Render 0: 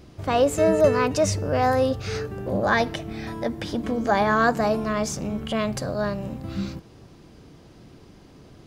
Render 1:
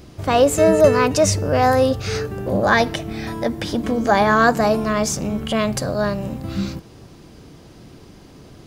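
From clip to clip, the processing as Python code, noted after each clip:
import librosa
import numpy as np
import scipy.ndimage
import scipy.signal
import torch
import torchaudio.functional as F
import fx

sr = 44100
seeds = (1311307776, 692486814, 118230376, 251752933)

y = fx.high_shelf(x, sr, hz=6400.0, db=5.5)
y = y * librosa.db_to_amplitude(5.0)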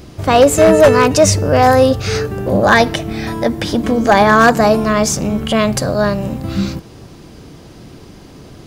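y = 10.0 ** (-7.0 / 20.0) * (np.abs((x / 10.0 ** (-7.0 / 20.0) + 3.0) % 4.0 - 2.0) - 1.0)
y = y * librosa.db_to_amplitude(6.0)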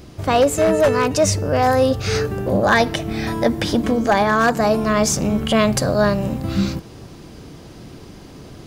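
y = fx.rider(x, sr, range_db=3, speed_s=0.5)
y = y * librosa.db_to_amplitude(-4.5)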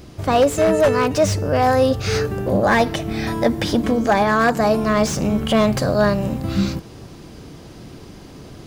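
y = fx.slew_limit(x, sr, full_power_hz=330.0)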